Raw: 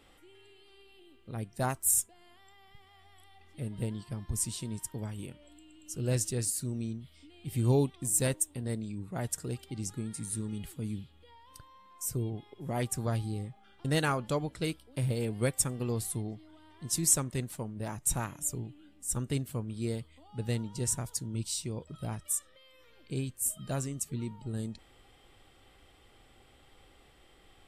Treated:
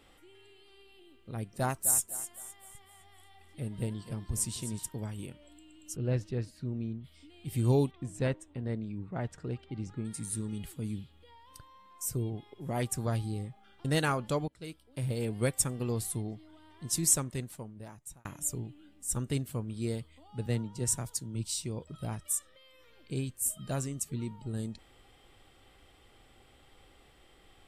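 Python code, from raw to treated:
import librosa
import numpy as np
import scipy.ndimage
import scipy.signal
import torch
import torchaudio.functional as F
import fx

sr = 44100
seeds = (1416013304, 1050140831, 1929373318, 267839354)

y = fx.echo_thinned(x, sr, ms=256, feedback_pct=39, hz=200.0, wet_db=-11.5, at=(1.38, 4.87), fade=0.02)
y = fx.air_absorb(y, sr, metres=330.0, at=(5.95, 7.03), fade=0.02)
y = fx.lowpass(y, sr, hz=2600.0, slope=12, at=(7.91, 10.05))
y = fx.band_widen(y, sr, depth_pct=40, at=(20.46, 21.49))
y = fx.edit(y, sr, fx.fade_in_from(start_s=14.48, length_s=0.81, floor_db=-20.0),
    fx.fade_out_span(start_s=17.08, length_s=1.17), tone=tone)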